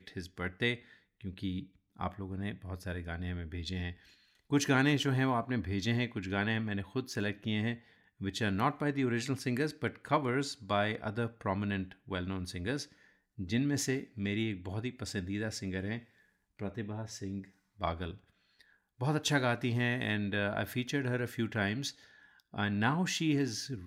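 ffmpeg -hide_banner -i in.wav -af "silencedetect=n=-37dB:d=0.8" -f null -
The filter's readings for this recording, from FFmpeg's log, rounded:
silence_start: 18.11
silence_end: 19.01 | silence_duration: 0.90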